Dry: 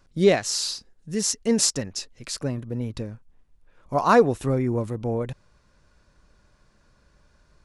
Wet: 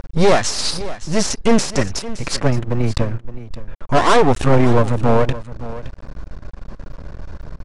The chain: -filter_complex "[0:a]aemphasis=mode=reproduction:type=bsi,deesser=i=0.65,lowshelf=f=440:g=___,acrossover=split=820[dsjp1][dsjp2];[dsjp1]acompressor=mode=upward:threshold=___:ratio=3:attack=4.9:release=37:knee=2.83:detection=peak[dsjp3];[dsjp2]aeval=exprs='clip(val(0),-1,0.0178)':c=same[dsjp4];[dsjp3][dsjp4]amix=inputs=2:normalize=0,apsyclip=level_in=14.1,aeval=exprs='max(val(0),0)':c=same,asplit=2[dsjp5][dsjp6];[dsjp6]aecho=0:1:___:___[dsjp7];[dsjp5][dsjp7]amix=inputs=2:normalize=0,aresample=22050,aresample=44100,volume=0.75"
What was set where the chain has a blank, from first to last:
-12, 0.01, 568, 0.168